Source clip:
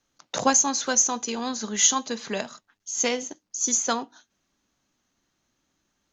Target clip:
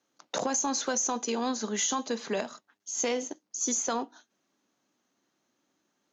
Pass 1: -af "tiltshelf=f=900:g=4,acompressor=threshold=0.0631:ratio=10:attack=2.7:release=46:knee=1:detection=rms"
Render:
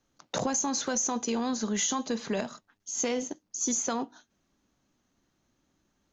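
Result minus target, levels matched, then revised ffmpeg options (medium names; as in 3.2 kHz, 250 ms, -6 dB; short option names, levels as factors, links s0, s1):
250 Hz band +2.5 dB
-af "highpass=270,tiltshelf=f=900:g=4,acompressor=threshold=0.0631:ratio=10:attack=2.7:release=46:knee=1:detection=rms"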